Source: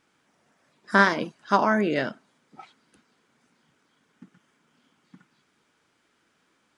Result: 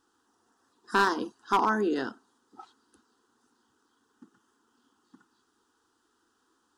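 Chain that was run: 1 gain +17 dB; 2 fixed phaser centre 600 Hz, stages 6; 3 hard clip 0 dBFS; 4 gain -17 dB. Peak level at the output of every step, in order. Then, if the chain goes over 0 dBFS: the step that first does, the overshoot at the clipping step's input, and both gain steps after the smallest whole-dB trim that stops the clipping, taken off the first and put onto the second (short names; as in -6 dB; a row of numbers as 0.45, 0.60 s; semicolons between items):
+12.5, +9.0, 0.0, -17.0 dBFS; step 1, 9.0 dB; step 1 +8 dB, step 4 -8 dB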